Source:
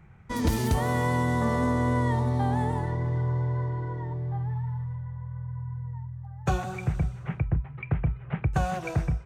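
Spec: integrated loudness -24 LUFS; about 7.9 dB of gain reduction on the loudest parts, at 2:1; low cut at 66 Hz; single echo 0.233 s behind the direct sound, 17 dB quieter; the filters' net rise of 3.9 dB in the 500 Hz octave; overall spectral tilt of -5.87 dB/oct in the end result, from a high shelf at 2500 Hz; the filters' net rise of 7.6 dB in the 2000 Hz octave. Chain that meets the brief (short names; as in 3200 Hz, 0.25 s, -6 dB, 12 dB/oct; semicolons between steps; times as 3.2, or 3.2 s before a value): HPF 66 Hz; bell 500 Hz +4 dB; bell 2000 Hz +5 dB; high shelf 2500 Hz +8.5 dB; compressor 2:1, threshold -34 dBFS; echo 0.233 s -17 dB; gain +9.5 dB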